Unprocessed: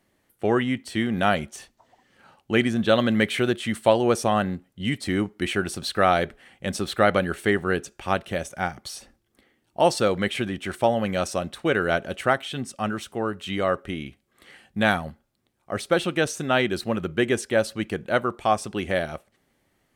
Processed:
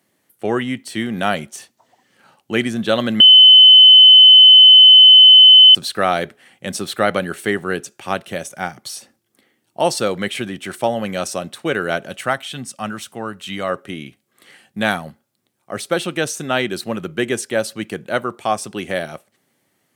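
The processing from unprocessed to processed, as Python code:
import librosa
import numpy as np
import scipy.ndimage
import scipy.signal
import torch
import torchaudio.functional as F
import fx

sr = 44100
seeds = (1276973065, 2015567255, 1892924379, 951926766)

y = fx.peak_eq(x, sr, hz=390.0, db=-6.0, octaves=0.77, at=(12.09, 13.7))
y = fx.edit(y, sr, fx.bleep(start_s=3.2, length_s=2.55, hz=3040.0, db=-6.5), tone=tone)
y = scipy.signal.sosfilt(scipy.signal.butter(4, 110.0, 'highpass', fs=sr, output='sos'), y)
y = fx.high_shelf(y, sr, hz=4900.0, db=7.5)
y = y * 10.0 ** (1.5 / 20.0)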